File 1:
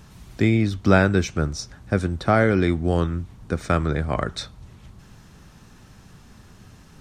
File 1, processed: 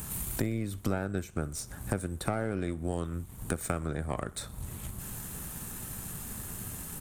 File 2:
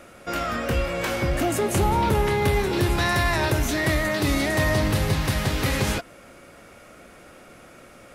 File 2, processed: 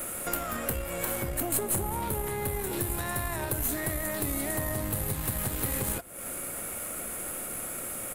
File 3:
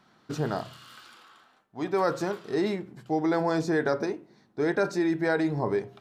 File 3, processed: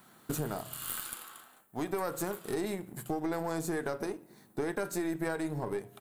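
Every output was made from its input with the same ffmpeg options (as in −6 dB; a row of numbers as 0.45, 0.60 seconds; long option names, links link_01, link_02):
-filter_complex "[0:a]acrossover=split=1600[link_01][link_02];[link_02]alimiter=level_in=2dB:limit=-24dB:level=0:latency=1:release=324,volume=-2dB[link_03];[link_01][link_03]amix=inputs=2:normalize=0,acompressor=threshold=-39dB:ratio=4,aexciter=amount=14.5:drive=2.5:freq=7800,aecho=1:1:61|122|183|244:0.0794|0.0453|0.0258|0.0147,asplit=2[link_04][link_05];[link_05]aeval=exprs='sgn(val(0))*max(abs(val(0))-0.00237,0)':channel_layout=same,volume=-4.5dB[link_06];[link_04][link_06]amix=inputs=2:normalize=0,aeval=exprs='0.224*(cos(1*acos(clip(val(0)/0.224,-1,1)))-cos(1*PI/2))+0.02*(cos(6*acos(clip(val(0)/0.224,-1,1)))-cos(6*PI/2))':channel_layout=same,volume=1.5dB"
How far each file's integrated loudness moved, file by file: −13.5, −7.5, −7.5 LU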